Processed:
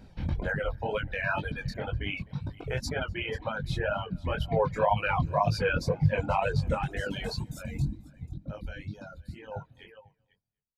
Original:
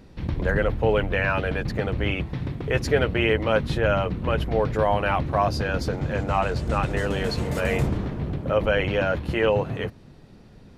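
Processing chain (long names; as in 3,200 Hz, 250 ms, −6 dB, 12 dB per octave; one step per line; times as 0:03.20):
fade-out on the ending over 3.42 s
reverb reduction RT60 1.6 s
brickwall limiter −17 dBFS, peak gain reduction 8.5 dB
comb filter 1.3 ms, depth 41%
single-tap delay 490 ms −16 dB
0:07.43–0:09.51: gain on a spectral selection 340–3,500 Hz −12 dB
single-tap delay 250 ms −19 dB
chorus effect 2 Hz, delay 18.5 ms, depth 5.3 ms
reverb reduction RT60 1.7 s
0:04.45–0:06.75: thirty-one-band graphic EQ 100 Hz +8 dB, 160 Hz +11 dB, 500 Hz +10 dB, 1,000 Hz +9 dB, 2,500 Hz +7 dB
highs frequency-modulated by the lows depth 0.12 ms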